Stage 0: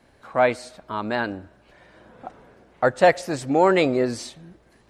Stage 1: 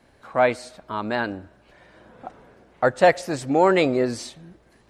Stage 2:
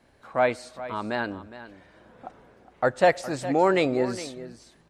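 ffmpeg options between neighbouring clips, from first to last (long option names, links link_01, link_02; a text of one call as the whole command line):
ffmpeg -i in.wav -af anull out.wav
ffmpeg -i in.wav -af "aecho=1:1:412:0.188,volume=-3.5dB" out.wav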